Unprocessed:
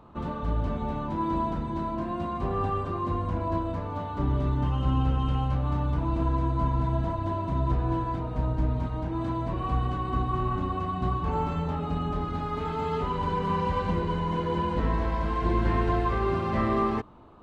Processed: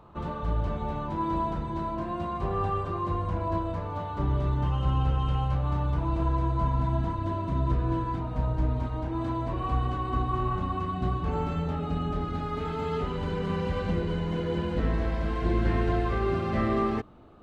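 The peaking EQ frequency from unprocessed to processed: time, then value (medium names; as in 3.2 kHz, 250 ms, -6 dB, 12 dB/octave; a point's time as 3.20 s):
peaking EQ -13 dB 0.23 oct
6.58 s 250 Hz
7.24 s 800 Hz
8.02 s 800 Hz
8.71 s 180 Hz
10.47 s 180 Hz
10.95 s 980 Hz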